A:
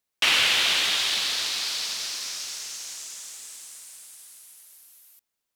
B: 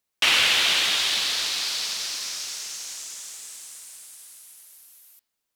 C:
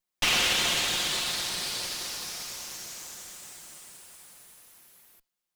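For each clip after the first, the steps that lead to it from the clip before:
hum removal 131.5 Hz, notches 40; level +1.5 dB
lower of the sound and its delayed copy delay 5.6 ms; level −3.5 dB

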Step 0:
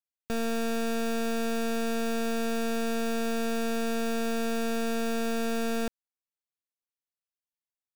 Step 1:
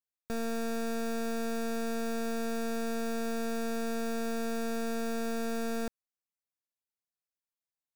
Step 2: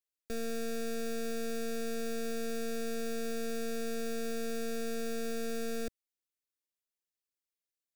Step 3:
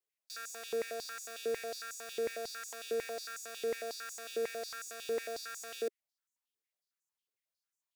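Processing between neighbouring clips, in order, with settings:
parametric band 3,000 Hz −9.5 dB 0.37 octaves; level −4 dB
phaser with its sweep stopped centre 380 Hz, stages 4
high-pass on a step sequencer 11 Hz 410–6,800 Hz; level −3 dB

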